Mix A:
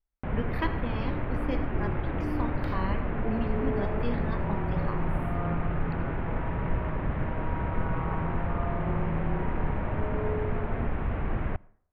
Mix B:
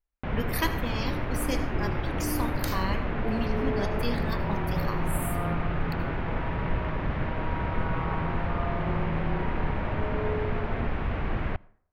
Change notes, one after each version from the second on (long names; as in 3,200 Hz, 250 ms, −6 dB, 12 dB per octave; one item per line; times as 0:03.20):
master: remove high-frequency loss of the air 450 metres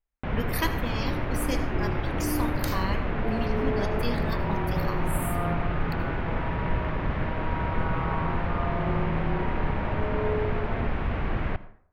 first sound: send +11.0 dB
second sound: send on